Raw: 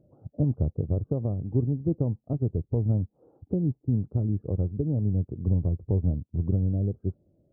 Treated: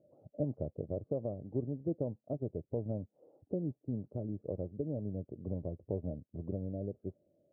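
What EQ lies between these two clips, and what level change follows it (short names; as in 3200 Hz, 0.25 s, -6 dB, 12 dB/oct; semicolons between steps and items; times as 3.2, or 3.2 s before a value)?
band-pass 480 Hz, Q 0.69; air absorption 340 m; bell 600 Hz +10 dB 0.45 oct; -6.0 dB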